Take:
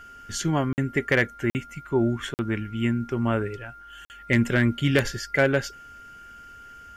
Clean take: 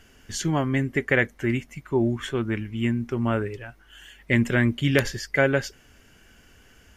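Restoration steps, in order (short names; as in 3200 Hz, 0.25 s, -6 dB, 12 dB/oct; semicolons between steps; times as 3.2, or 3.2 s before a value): clip repair -11 dBFS; notch 1400 Hz, Q 30; interpolate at 0.73/1.5/2.34/4.05, 49 ms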